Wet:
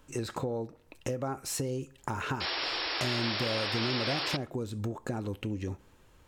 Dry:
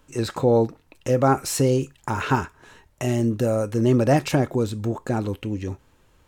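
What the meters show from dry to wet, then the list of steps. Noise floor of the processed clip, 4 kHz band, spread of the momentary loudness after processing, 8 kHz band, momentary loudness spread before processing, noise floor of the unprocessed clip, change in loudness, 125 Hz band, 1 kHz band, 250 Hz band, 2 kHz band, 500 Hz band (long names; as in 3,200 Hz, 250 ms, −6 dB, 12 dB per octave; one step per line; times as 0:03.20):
−61 dBFS, +5.0 dB, 9 LU, −8.0 dB, 10 LU, −60 dBFS, −10.0 dB, −12.0 dB, −10.5 dB, −12.5 dB, −2.0 dB, −13.5 dB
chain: downward compressor 10 to 1, threshold −29 dBFS, peak gain reduction 16 dB
sound drawn into the spectrogram noise, 0:02.40–0:04.37, 280–5,600 Hz −32 dBFS
tape delay 69 ms, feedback 56%, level −23.5 dB, low-pass 2,700 Hz
level −1.5 dB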